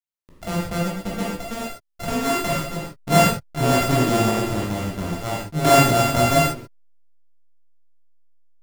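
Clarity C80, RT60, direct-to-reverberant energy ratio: 4.0 dB, not exponential, -5.5 dB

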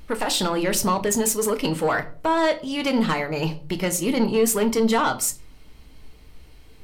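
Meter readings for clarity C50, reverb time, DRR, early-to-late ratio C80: 16.5 dB, 0.40 s, 7.0 dB, 21.5 dB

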